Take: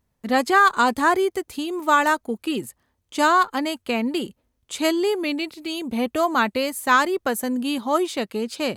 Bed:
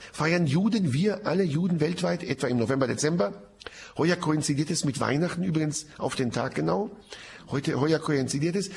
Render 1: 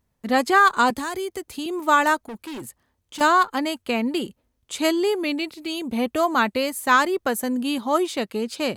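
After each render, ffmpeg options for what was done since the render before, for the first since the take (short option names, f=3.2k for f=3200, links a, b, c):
-filter_complex "[0:a]asettb=1/sr,asplit=3[a][b][c];[a]atrim=end=0.904[d];[b]atrim=start=0.9:end=1.66,asetpts=PTS-STARTPTS,afade=t=in:d=0.004:c=qsin,afade=t=out:st=0.756:d=0.004:c=qsin,acrossover=split=170|3000[e][f][g];[f]acompressor=threshold=-27dB:ratio=6:attack=3.2:release=140:knee=2.83:detection=peak[h];[e][h][g]amix=inputs=3:normalize=0[i];[c]atrim=start=1.656[j];[d][i]acrossfade=d=0.004:c1=hsin:c2=qsin[k];[k][j]acrossfade=d=0.004:c1=qsin:c2=hsin,asettb=1/sr,asplit=3[l][m][n];[l]atrim=end=2.194[o];[m]atrim=start=2.19:end=3.21,asetpts=PTS-STARTPTS,afade=t=in:d=0.004:c=qsin,afade=t=out:st=1.016:d=0.004:c=qsin,volume=31.5dB,asoftclip=hard,volume=-31.5dB[p];[n]atrim=start=3.206[q];[o][p]acrossfade=d=0.004:c1=hsin:c2=qsin[r];[r][q]acrossfade=d=0.004:c1=qsin:c2=hsin"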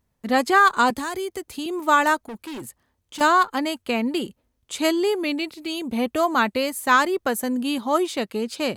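-af anull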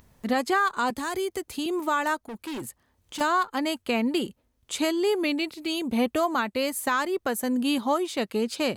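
-af "alimiter=limit=-15.5dB:level=0:latency=1:release=374,acompressor=mode=upward:threshold=-45dB:ratio=2.5"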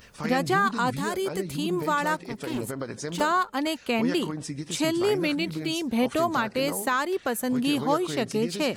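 -filter_complex "[1:a]volume=-8.5dB[a];[0:a][a]amix=inputs=2:normalize=0"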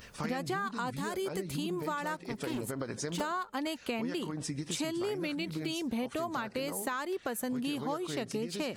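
-af "acompressor=threshold=-32dB:ratio=6"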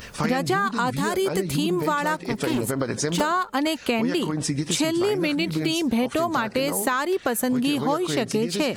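-af "volume=11.5dB"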